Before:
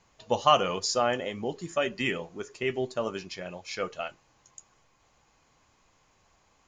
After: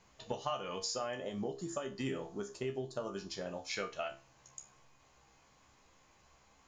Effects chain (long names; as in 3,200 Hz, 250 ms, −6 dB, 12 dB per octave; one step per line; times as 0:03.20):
0:01.20–0:03.70: parametric band 2,300 Hz −12 dB 0.81 octaves
downward compressor 10 to 1, threshold −34 dBFS, peak gain reduction 19 dB
tuned comb filter 67 Hz, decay 0.3 s, harmonics all, mix 80%
level +6 dB